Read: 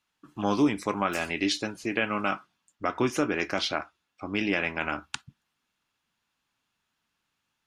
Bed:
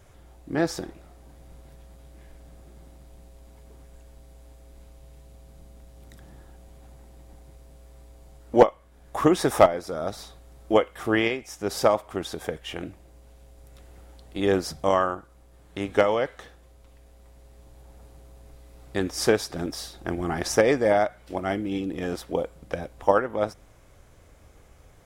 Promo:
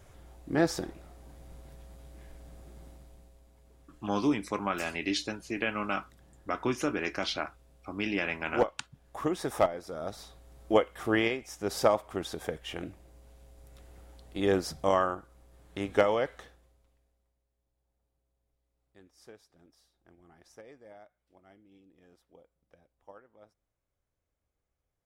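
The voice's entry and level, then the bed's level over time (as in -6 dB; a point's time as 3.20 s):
3.65 s, -4.0 dB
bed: 2.89 s -1.5 dB
3.49 s -11 dB
9.34 s -11 dB
10.62 s -4 dB
16.37 s -4 dB
17.48 s -31.5 dB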